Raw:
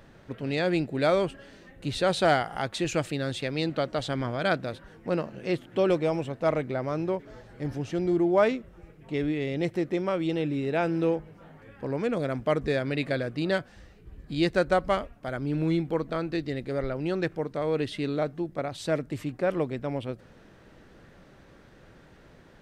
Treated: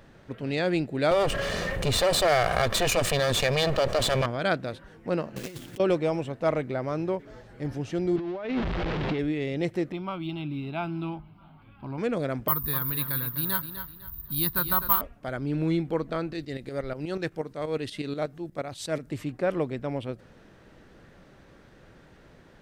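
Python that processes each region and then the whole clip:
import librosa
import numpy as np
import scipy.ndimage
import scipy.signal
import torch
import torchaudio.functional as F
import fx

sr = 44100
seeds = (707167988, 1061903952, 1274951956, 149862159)

y = fx.chain(x, sr, fx.lower_of_two(delay_ms=1.7),
    fx.env_flatten(amount_pct=70), at=(1.11, 4.26))
y = fx.chain(y, sr, fx.block_float(bits=3),
    fx.over_compress(threshold_db=-36.0, ratio=-1.0),
    fx.peak_eq(hz=850.0, db=-5.5, octaves=2.5), at=(5.36, 5.8))
y = fx.chain(y, sr, fx.zero_step(step_db=-28.5),
    fx.lowpass(hz=4000.0, slope=24),
    fx.over_compress(threshold_db=-29.0, ratio=-1.0), at=(8.16, 9.19))
y = fx.chain(y, sr, fx.median_filter(points=3),
    fx.peak_eq(hz=8700.0, db=-7.5, octaves=0.79),
    fx.fixed_phaser(hz=1800.0, stages=6), at=(9.92, 11.98))
y = fx.chain(y, sr, fx.curve_eq(hz=(140.0, 670.0, 980.0, 2300.0, 4000.0, 8000.0), db=(0, -20, 8, -12, 2, -20)),
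    fx.echo_feedback(ms=252, feedback_pct=31, wet_db=-10.0),
    fx.resample_bad(factor=3, down='none', up='zero_stuff'), at=(12.48, 15.01))
y = fx.chain(y, sr, fx.tremolo_shape(shape='saw_up', hz=8.3, depth_pct=70),
    fx.high_shelf(hz=4500.0, db=8.5), at=(16.33, 19.1))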